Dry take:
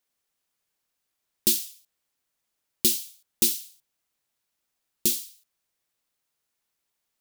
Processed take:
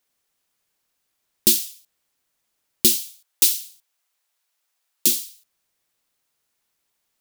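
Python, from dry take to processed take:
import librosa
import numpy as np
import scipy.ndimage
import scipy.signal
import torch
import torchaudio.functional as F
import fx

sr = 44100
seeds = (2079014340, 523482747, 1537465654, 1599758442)

y = fx.highpass(x, sr, hz=630.0, slope=12, at=(3.04, 5.07))
y = y * 10.0 ** (5.5 / 20.0)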